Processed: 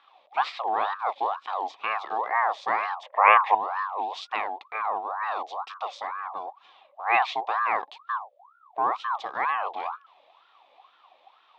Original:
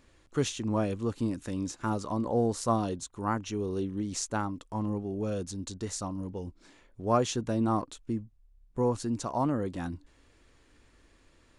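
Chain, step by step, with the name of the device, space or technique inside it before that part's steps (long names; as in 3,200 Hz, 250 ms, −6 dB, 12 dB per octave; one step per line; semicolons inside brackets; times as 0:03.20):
voice changer toy (ring modulator whose carrier an LFO sweeps 980 Hz, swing 45%, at 2.1 Hz; loudspeaker in its box 580–3,900 Hz, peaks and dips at 760 Hz +9 dB, 1,100 Hz +6 dB, 1,500 Hz −8 dB, 2,500 Hz +4 dB, 3,600 Hz +10 dB)
0:03.03–0:03.55: octave-band graphic EQ 250/500/1,000/2,000/4,000/8,000 Hz −6/+11/+12/+12/−11/−6 dB
level +3 dB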